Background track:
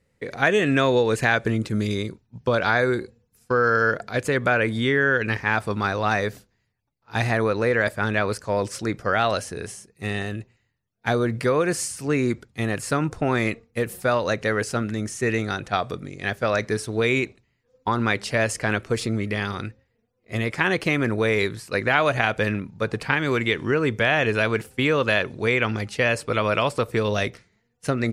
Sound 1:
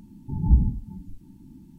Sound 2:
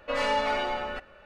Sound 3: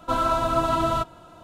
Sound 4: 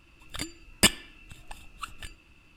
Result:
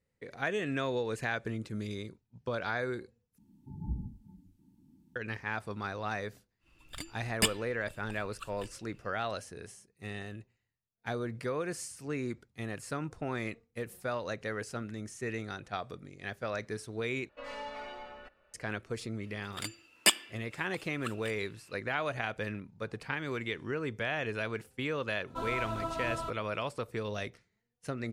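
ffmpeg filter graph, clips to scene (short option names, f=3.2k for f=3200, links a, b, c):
-filter_complex "[4:a]asplit=2[a][b];[0:a]volume=-13.5dB[c];[1:a]highpass=f=100:p=1[d];[b]highpass=370[e];[c]asplit=3[f][g][h];[f]atrim=end=3.384[i];[d]atrim=end=1.78,asetpts=PTS-STARTPTS,volume=-13.5dB[j];[g]atrim=start=5.156:end=17.294[k];[2:a]atrim=end=1.25,asetpts=PTS-STARTPTS,volume=-15.5dB[l];[h]atrim=start=18.536[m];[a]atrim=end=2.56,asetpts=PTS-STARTPTS,volume=-7.5dB,afade=t=in:d=0.1,afade=t=out:st=2.46:d=0.1,adelay=6590[n];[e]atrim=end=2.56,asetpts=PTS-STARTPTS,volume=-3dB,afade=t=in:d=0.004:c=hsin,afade=t=out:st=2.556:d=0.004:c=hsin,adelay=19230[o];[3:a]atrim=end=1.43,asetpts=PTS-STARTPTS,volume=-14dB,afade=t=in:d=0.004:c=hsin,afade=t=out:st=1.426:d=0.004:c=hsin,adelay=25270[p];[i][j]acrossfade=d=0.004:c1=hsin:c2=hsin[q];[q][k]acrossfade=d=0.004:c1=hsin:c2=hsin[r];[r][l]acrossfade=d=0.004:c1=hsin:c2=hsin[s];[s][m]acrossfade=d=0.004:c1=hsin:c2=hsin[t];[t][n][o][p]amix=inputs=4:normalize=0"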